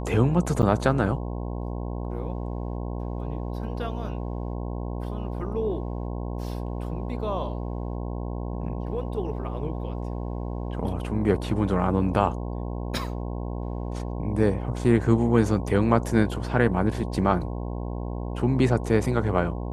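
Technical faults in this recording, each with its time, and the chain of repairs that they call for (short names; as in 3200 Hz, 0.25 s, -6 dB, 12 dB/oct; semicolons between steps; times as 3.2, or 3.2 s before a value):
buzz 60 Hz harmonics 18 -31 dBFS
0.62–0.63 gap 8.3 ms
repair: de-hum 60 Hz, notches 18; interpolate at 0.62, 8.3 ms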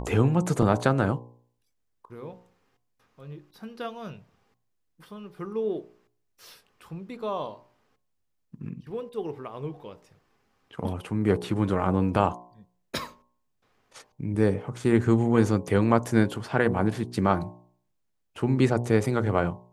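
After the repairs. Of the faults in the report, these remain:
none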